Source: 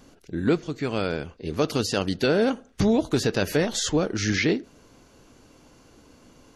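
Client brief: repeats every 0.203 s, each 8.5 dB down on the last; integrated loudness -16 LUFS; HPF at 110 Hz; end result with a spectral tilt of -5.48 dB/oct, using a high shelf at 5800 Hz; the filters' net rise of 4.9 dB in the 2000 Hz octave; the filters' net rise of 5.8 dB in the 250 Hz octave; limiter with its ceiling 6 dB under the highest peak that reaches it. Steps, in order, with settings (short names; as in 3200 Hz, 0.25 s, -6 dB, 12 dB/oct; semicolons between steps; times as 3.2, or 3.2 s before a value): HPF 110 Hz; bell 250 Hz +7.5 dB; bell 2000 Hz +7 dB; high shelf 5800 Hz -7.5 dB; limiter -10.5 dBFS; feedback echo 0.203 s, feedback 38%, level -8.5 dB; gain +6.5 dB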